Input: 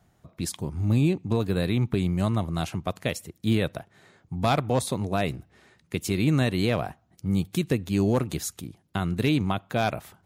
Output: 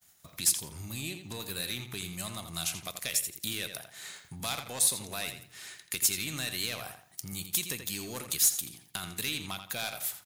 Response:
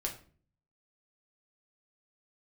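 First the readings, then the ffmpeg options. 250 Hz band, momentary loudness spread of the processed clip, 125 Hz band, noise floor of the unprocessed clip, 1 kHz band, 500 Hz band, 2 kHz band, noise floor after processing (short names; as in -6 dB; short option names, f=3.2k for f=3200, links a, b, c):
-18.5 dB, 14 LU, -18.5 dB, -65 dBFS, -12.5 dB, -16.5 dB, -3.5 dB, -60 dBFS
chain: -filter_complex "[0:a]agate=range=-33dB:threshold=-55dB:ratio=3:detection=peak,tiltshelf=f=930:g=-5.5,acompressor=threshold=-45dB:ratio=2.5,asoftclip=type=tanh:threshold=-31.5dB,crystalizer=i=7.5:c=0,asoftclip=type=hard:threshold=-16dB,asplit=2[a][b];[b]adelay=84,lowpass=f=5k:p=1,volume=-8dB,asplit=2[c][d];[d]adelay=84,lowpass=f=5k:p=1,volume=0.31,asplit=2[e][f];[f]adelay=84,lowpass=f=5k:p=1,volume=0.31,asplit=2[g][h];[h]adelay=84,lowpass=f=5k:p=1,volume=0.31[i];[a][c][e][g][i]amix=inputs=5:normalize=0,asplit=2[j][k];[1:a]atrim=start_sample=2205,adelay=24[l];[k][l]afir=irnorm=-1:irlink=0,volume=-18.5dB[m];[j][m]amix=inputs=2:normalize=0"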